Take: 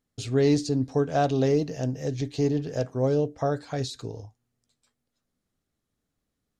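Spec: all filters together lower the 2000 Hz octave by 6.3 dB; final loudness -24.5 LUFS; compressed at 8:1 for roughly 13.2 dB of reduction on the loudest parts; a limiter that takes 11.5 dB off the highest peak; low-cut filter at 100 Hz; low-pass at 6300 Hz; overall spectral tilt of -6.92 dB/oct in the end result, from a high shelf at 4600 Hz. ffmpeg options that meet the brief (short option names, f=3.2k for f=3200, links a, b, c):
-af "highpass=100,lowpass=6.3k,equalizer=f=2k:t=o:g=-7.5,highshelf=f=4.6k:g=-6.5,acompressor=threshold=-32dB:ratio=8,volume=17.5dB,alimiter=limit=-14dB:level=0:latency=1"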